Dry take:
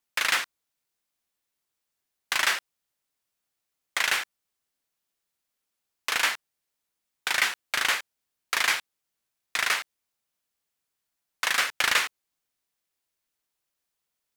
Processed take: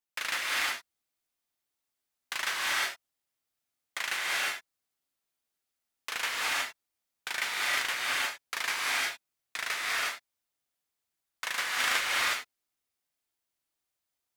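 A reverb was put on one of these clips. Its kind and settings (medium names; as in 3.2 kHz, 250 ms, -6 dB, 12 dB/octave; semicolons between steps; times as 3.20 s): gated-style reverb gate 380 ms rising, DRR -5 dB; trim -9 dB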